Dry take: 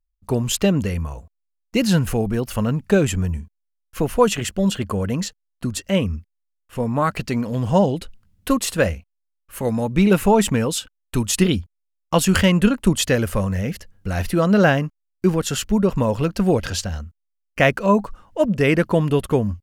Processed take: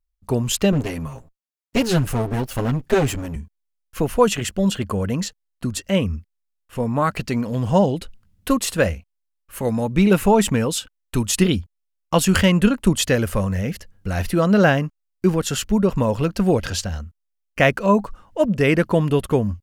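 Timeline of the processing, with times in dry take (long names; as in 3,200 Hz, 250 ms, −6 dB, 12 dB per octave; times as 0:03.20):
0:00.72–0:03.36: lower of the sound and its delayed copy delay 7.5 ms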